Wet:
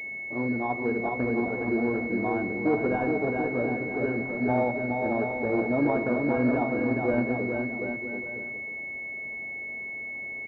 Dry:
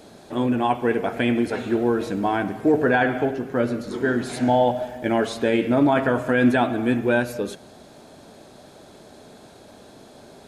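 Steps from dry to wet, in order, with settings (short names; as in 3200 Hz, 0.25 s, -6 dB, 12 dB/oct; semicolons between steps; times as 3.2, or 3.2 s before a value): bouncing-ball echo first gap 0.42 s, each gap 0.75×, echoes 5; pulse-width modulation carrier 2200 Hz; gain -7 dB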